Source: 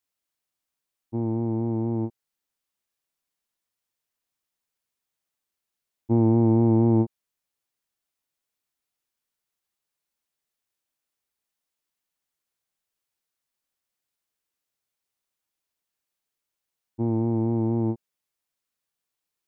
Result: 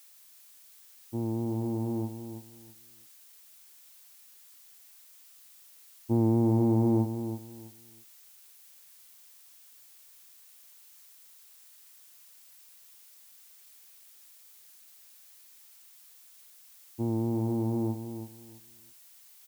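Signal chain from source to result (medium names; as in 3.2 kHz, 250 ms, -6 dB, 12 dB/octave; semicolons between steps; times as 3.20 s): added noise blue -51 dBFS; feedback delay 327 ms, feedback 22%, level -9.5 dB; trim -5 dB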